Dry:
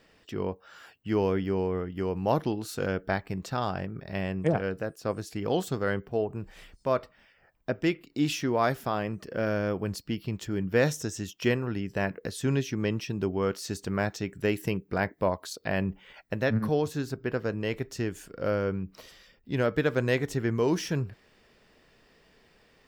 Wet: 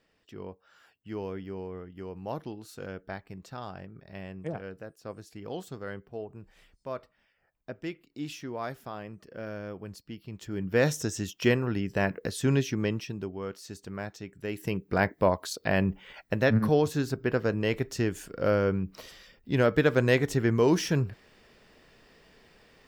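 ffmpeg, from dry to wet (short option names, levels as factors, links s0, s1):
-af "volume=4.73,afade=t=in:st=10.27:d=0.76:silence=0.251189,afade=t=out:st=12.65:d=0.66:silence=0.298538,afade=t=in:st=14.47:d=0.53:silence=0.266073"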